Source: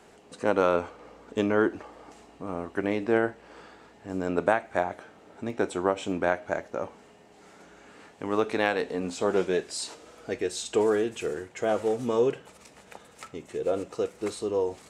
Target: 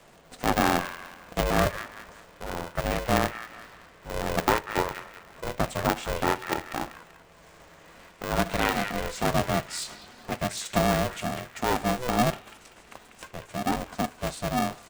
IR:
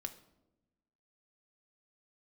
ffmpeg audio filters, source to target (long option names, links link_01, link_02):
-filter_complex "[0:a]acrossover=split=170|1200|3500[link_01][link_02][link_03][link_04];[link_03]aecho=1:1:192|384|576|768|960:0.708|0.276|0.108|0.042|0.0164[link_05];[link_01][link_02][link_05][link_04]amix=inputs=4:normalize=0,aeval=exprs='val(0)*sgn(sin(2*PI*250*n/s))':channel_layout=same"